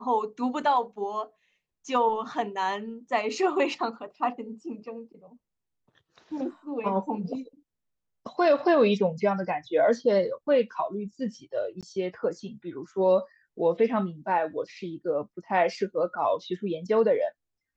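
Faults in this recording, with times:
0:11.81–0:11.83: drop-out 17 ms

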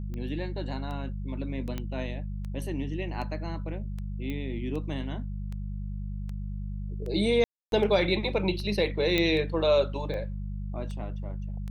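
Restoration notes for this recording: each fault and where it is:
mains hum 50 Hz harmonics 4 −34 dBFS
scratch tick 78 rpm −27 dBFS
0:01.78: click −20 dBFS
0:04.30: click −23 dBFS
0:07.44–0:07.72: drop-out 282 ms
0:09.18: click −12 dBFS

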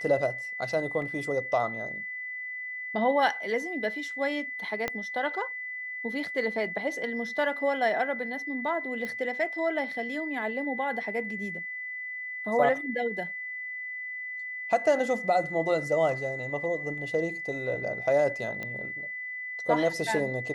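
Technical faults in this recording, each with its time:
whistle 2,000 Hz −34 dBFS
0:01.02: drop-out 2 ms
0:04.88: click −14 dBFS
0:09.05: click −22 dBFS
0:18.63: click −22 dBFS

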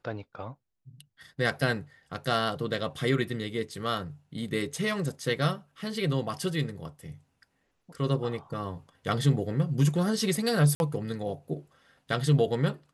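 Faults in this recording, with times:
0:10.75–0:10.80: drop-out 51 ms

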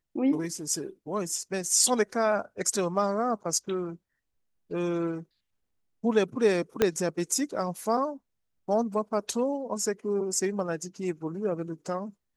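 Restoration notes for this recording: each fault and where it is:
0:06.82: click −8 dBFS

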